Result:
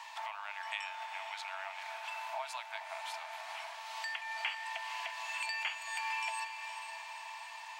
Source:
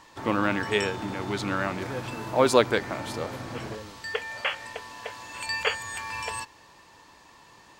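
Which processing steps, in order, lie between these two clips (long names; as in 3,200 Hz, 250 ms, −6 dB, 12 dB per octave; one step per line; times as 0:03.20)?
downward compressor 4 to 1, threshold −43 dBFS, peak gain reduction 24 dB
Chebyshev high-pass with heavy ripple 640 Hz, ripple 9 dB
on a send: feedback delay with all-pass diffusion 469 ms, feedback 59%, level −8.5 dB
on the sum: level +9 dB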